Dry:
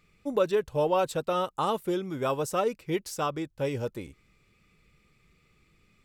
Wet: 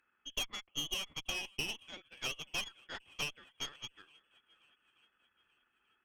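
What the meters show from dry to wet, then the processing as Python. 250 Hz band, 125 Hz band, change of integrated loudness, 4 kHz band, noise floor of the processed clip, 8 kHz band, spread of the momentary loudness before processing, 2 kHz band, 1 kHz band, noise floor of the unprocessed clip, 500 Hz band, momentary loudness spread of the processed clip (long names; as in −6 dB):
−21.0 dB, −18.0 dB, −10.5 dB, +4.5 dB, −79 dBFS, −1.0 dB, 7 LU, −1.0 dB, −20.5 dB, −67 dBFS, −26.5 dB, 10 LU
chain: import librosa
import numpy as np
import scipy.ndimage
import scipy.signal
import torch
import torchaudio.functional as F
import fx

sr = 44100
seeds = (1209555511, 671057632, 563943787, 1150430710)

y = scipy.signal.sosfilt(scipy.signal.bessel(8, 900.0, 'highpass', norm='mag', fs=sr, output='sos'), x)
y = fx.freq_invert(y, sr, carrier_hz=3800)
y = 10.0 ** (-29.0 / 20.0) * np.tanh(y / 10.0 ** (-29.0 / 20.0))
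y = fx.transient(y, sr, attack_db=6, sustain_db=-8)
y = fx.echo_swing(y, sr, ms=883, ratio=1.5, feedback_pct=43, wet_db=-23.5)
y = fx.cheby_harmonics(y, sr, harmonics=(3, 4, 8), levels_db=(-15, -17, -28), full_scale_db=-15.5)
y = F.gain(torch.from_numpy(y), -1.0).numpy()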